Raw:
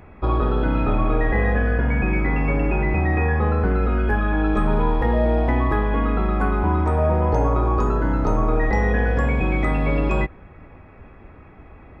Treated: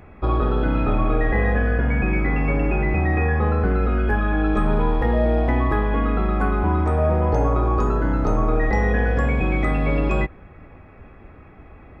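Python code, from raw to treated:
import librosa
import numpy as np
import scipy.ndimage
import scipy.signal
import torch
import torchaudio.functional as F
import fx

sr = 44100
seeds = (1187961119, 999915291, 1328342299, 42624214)

y = fx.notch(x, sr, hz=950.0, q=18.0)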